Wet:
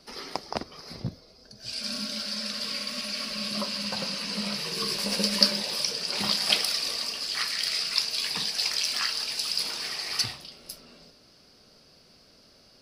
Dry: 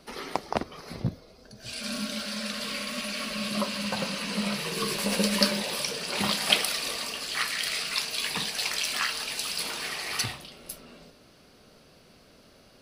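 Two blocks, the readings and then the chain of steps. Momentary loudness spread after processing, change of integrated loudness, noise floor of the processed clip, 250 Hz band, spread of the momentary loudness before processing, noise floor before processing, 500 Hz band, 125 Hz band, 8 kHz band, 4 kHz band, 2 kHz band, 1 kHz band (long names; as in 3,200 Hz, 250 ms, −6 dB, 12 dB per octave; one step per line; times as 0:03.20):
14 LU, +1.5 dB, −57 dBFS, −4.0 dB, 11 LU, −56 dBFS, −4.0 dB, −4.0 dB, −1.0 dB, +3.0 dB, −3.5 dB, −4.0 dB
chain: parametric band 5,000 Hz +12 dB 0.48 octaves
level −4 dB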